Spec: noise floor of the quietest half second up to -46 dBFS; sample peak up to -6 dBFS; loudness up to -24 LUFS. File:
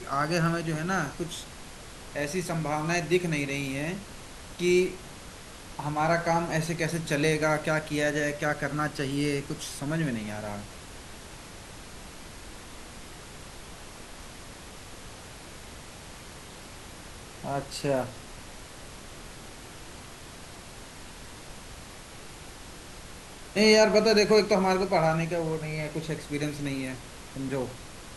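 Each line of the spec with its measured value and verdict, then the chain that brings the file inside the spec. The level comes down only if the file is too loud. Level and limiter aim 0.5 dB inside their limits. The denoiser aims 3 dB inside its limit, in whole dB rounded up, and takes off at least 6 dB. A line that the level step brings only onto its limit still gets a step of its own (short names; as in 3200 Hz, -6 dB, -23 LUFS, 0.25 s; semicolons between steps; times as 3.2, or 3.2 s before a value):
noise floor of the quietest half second -45 dBFS: fail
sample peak -8.0 dBFS: OK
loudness -27.5 LUFS: OK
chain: denoiser 6 dB, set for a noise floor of -45 dBFS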